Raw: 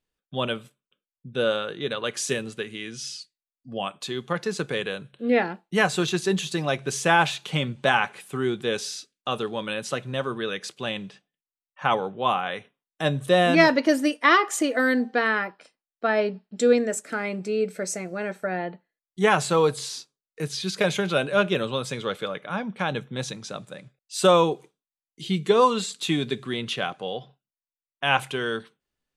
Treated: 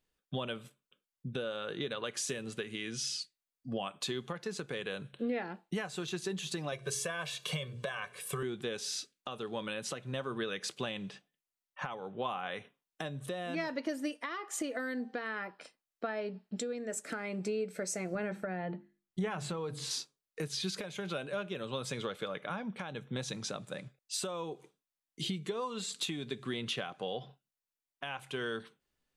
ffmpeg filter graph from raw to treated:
-filter_complex "[0:a]asettb=1/sr,asplit=3[s0][s1][s2];[s0]atrim=end=6.724[s3];[s1]atrim=start=6.72:end=8.43,asetpts=PTS-STARTPTS,afade=t=in:d=0.004:c=qsin,afade=t=out:st=1.706:d=0.004:c=qsin,highshelf=f=9600:g=9.5,bandreject=f=60:t=h:w=6,bandreject=f=120:t=h:w=6,bandreject=f=180:t=h:w=6,bandreject=f=240:t=h:w=6,bandreject=f=300:t=h:w=6,bandreject=f=360:t=h:w=6,bandreject=f=420:t=h:w=6,bandreject=f=480:t=h:w=6,aecho=1:1:1.8:0.98,atrim=end_sample=75411[s4];[s2]atrim=start=8.426[s5];[s3][s4]acrossfade=d=0.004:c1=hsin:c2=qsin[s6];[s6][s5]acrossfade=d=0.004:c1=qsin:c2=hsin,asettb=1/sr,asplit=3[s7][s8][s9];[s7]atrim=end=18.154[s10];[s8]atrim=start=18.15:end=19.91,asetpts=PTS-STARTPTS,afade=t=in:d=0.004:c=qsin,afade=t=out:st=1.756:d=0.004:c=qsin,bass=f=250:g=7,treble=f=4000:g=-6,acompressor=threshold=0.0501:ratio=1.5:attack=3.2:release=140:knee=1:detection=peak,bandreject=f=50:t=h:w=6,bandreject=f=100:t=h:w=6,bandreject=f=150:t=h:w=6,bandreject=f=200:t=h:w=6,bandreject=f=250:t=h:w=6,bandreject=f=300:t=h:w=6,bandreject=f=350:t=h:w=6[s11];[s9]atrim=start=19.906[s12];[s10][s11]acrossfade=d=0.004:c1=hsin:c2=qsin[s13];[s13][s12]acrossfade=d=0.004:c1=qsin:c2=hsin,acompressor=threshold=0.0251:ratio=12,alimiter=level_in=1.19:limit=0.0631:level=0:latency=1:release=445,volume=0.841,volume=1.12"

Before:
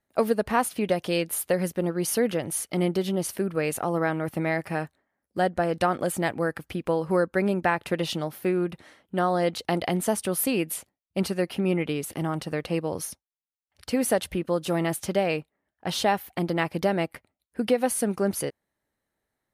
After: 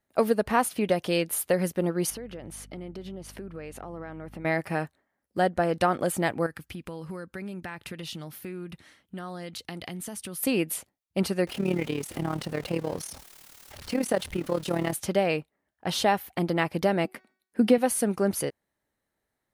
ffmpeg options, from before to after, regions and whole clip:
-filter_complex "[0:a]asettb=1/sr,asplit=3[s0][s1][s2];[s0]atrim=end=2.104[s3];[s1]atrim=start=2.1:end=4.45,asetpts=PTS-STARTPTS,afade=t=in:d=0.004:c=qsin,afade=t=out:st=2.346:d=0.004:c=qsin,aemphasis=mode=reproduction:type=50kf,acompressor=threshold=0.0141:ratio=5:attack=3.2:release=140:knee=1:detection=peak,aeval=exprs='val(0)+0.00355*(sin(2*PI*50*n/s)+sin(2*PI*2*50*n/s)/2+sin(2*PI*3*50*n/s)/3+sin(2*PI*4*50*n/s)/4+sin(2*PI*5*50*n/s)/5)':c=same[s4];[s2]atrim=start=4.446[s5];[s3][s4]acrossfade=d=0.004:c1=hsin:c2=qsin[s6];[s6][s5]acrossfade=d=0.004:c1=qsin:c2=hsin,asettb=1/sr,asplit=3[s7][s8][s9];[s7]atrim=end=6.464[s10];[s8]atrim=start=6.46:end=10.43,asetpts=PTS-STARTPTS,afade=t=in:d=0.004:c=qsin,afade=t=out:st=3.966:d=0.004:c=qsin,equalizer=f=610:w=0.6:g=-10,acompressor=threshold=0.02:ratio=4:attack=3.2:release=140:knee=1:detection=peak[s11];[s9]atrim=start=10.426[s12];[s10][s11]acrossfade=d=0.004:c1=hsin:c2=qsin[s13];[s13][s12]acrossfade=d=0.004:c1=qsin:c2=hsin,asettb=1/sr,asplit=3[s14][s15][s16];[s14]atrim=end=11.474[s17];[s15]atrim=start=11.47:end=14.93,asetpts=PTS-STARTPTS,afade=t=in:d=0.004:c=qsin,afade=t=out:st=3.456:d=0.004:c=qsin,aeval=exprs='val(0)+0.5*0.0158*sgn(val(0))':c=same,acrossover=split=9200[s18][s19];[s19]acompressor=threshold=0.00708:ratio=4:attack=1:release=60[s20];[s18][s20]amix=inputs=2:normalize=0,tremolo=f=37:d=0.75[s21];[s16]atrim=start=14.926[s22];[s17][s21]acrossfade=d=0.004:c1=hsin:c2=qsin[s23];[s23][s22]acrossfade=d=0.004:c1=qsin:c2=hsin,asettb=1/sr,asplit=3[s24][s25][s26];[s24]atrim=end=17.054[s27];[s25]atrim=start=17.05:end=17.78,asetpts=PTS-STARTPTS,afade=t=in:d=0.004:c=qsin,afade=t=out:st=0.726:d=0.004:c=qsin,lowshelf=f=150:t=q:w=3:g=-11,bandreject=f=374.6:t=h:w=4,bandreject=f=749.2:t=h:w=4,bandreject=f=1123.8:t=h:w=4,bandreject=f=1498.4:t=h:w=4,bandreject=f=1873:t=h:w=4,bandreject=f=2247.6:t=h:w=4,bandreject=f=2622.2:t=h:w=4,bandreject=f=2996.8:t=h:w=4,bandreject=f=3371.4:t=h:w=4,bandreject=f=3746:t=h:w=4,bandreject=f=4120.6:t=h:w=4,bandreject=f=4495.2:t=h:w=4,bandreject=f=4869.8:t=h:w=4,bandreject=f=5244.4:t=h:w=4,bandreject=f=5619:t=h:w=4,bandreject=f=5993.6:t=h:w=4,bandreject=f=6368.2:t=h:w=4,bandreject=f=6742.8:t=h:w=4,bandreject=f=7117.4:t=h:w=4[s28];[s26]atrim=start=17.776[s29];[s27][s28]acrossfade=d=0.004:c1=hsin:c2=qsin[s30];[s30][s29]acrossfade=d=0.004:c1=qsin:c2=hsin"

